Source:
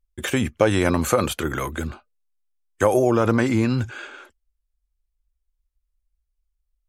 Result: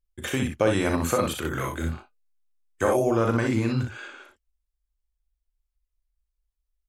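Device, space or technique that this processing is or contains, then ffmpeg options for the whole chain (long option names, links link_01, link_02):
slapback doubling: -filter_complex "[0:a]asplit=3[link_01][link_02][link_03];[link_02]adelay=37,volume=-7.5dB[link_04];[link_03]adelay=61,volume=-5dB[link_05];[link_01][link_04][link_05]amix=inputs=3:normalize=0,asettb=1/sr,asplit=3[link_06][link_07][link_08];[link_06]atrim=end=1.504[link_09];[link_07]atrim=start=1.5:end=2.97,asetpts=PTS-STARTPTS,afade=type=in:duration=0.004:curve=qsin,afade=type=out:start_time=1.466:duration=0.004:curve=qsin,asplit=2[link_10][link_11];[link_11]adelay=24,volume=-7dB[link_12];[link_10][link_12]amix=inputs=2:normalize=0,atrim=end_sample=64827[link_13];[link_08]atrim=start=2.966[link_14];[link_09][link_13]acrossfade=duration=0.004:curve1=hsin:curve2=qsin[link_15];[link_15][link_14]acrossfade=duration=0.004:curve1=qsin:curve2=hsin,volume=-5.5dB"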